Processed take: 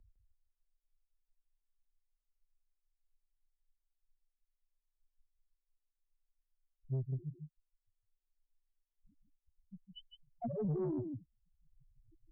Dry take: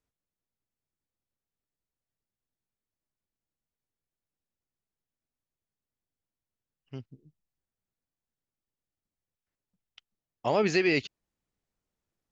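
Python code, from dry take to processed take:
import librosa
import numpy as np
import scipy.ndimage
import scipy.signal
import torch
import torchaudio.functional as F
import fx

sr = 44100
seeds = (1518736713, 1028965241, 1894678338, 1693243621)

y = fx.over_compress(x, sr, threshold_db=-33.0, ratio=-1.0)
y = fx.env_lowpass_down(y, sr, base_hz=400.0, full_db=-36.5)
y = fx.spec_topn(y, sr, count=1)
y = fx.tilt_shelf(y, sr, db=6.5, hz=970.0)
y = y + 10.0 ** (-8.0 / 20.0) * np.pad(y, (int(156 * sr / 1000.0), 0))[:len(y)]
y = fx.tube_stage(y, sr, drive_db=34.0, bias=0.2)
y = fx.peak_eq(y, sr, hz=68.0, db=-9.5, octaves=1.1)
y = fx.band_squash(y, sr, depth_pct=70)
y = y * 10.0 ** (7.5 / 20.0)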